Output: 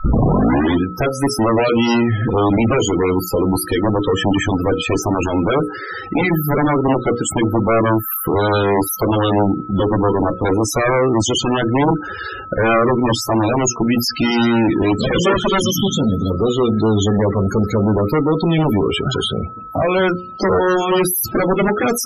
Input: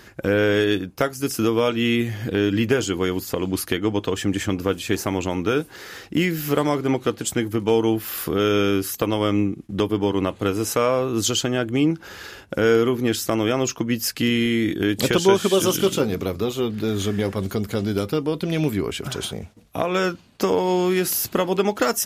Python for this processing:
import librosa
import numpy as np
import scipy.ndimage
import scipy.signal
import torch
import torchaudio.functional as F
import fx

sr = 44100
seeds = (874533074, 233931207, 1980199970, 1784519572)

y = fx.tape_start_head(x, sr, length_s=0.85)
y = fx.spec_box(y, sr, start_s=15.6, length_s=0.71, low_hz=290.0, high_hz=3000.0, gain_db=-11)
y = fx.hum_notches(y, sr, base_hz=60, count=9)
y = fx.dynamic_eq(y, sr, hz=860.0, q=7.4, threshold_db=-46.0, ratio=4.0, max_db=-4)
y = y + 10.0 ** (-43.0 / 20.0) * np.sin(2.0 * np.pi * 1300.0 * np.arange(len(y)) / sr)
y = fx.cheby_harmonics(y, sr, harmonics=(2, 3, 5, 7), levels_db=(-33, -24, -45, -9), full_scale_db=-4.0)
y = np.clip(y, -10.0 ** (-16.0 / 20.0), 10.0 ** (-16.0 / 20.0))
y = fx.spec_topn(y, sr, count=32)
y = F.gain(torch.from_numpy(y), 8.0).numpy()